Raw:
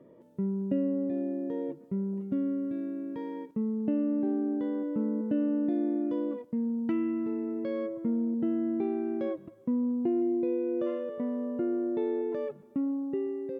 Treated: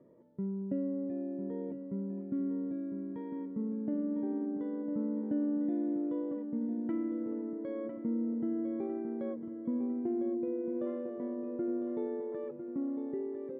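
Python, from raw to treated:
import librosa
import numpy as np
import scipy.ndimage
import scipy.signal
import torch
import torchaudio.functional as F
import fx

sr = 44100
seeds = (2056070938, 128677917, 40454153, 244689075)

y = fx.air_absorb(x, sr, metres=410.0)
y = fx.notch(y, sr, hz=2700.0, q=5.3)
y = fx.echo_feedback(y, sr, ms=1002, feedback_pct=49, wet_db=-9)
y = y * 10.0 ** (-5.0 / 20.0)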